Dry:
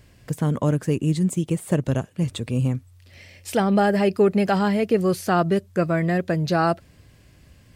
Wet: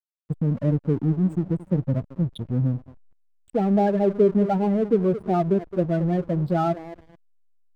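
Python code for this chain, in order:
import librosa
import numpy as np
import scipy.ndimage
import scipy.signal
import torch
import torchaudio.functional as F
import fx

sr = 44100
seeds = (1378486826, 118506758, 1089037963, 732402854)

y = fx.echo_wet_bandpass(x, sr, ms=217, feedback_pct=44, hz=420.0, wet_db=-11.5)
y = fx.spec_topn(y, sr, count=8)
y = fx.backlash(y, sr, play_db=-30.5)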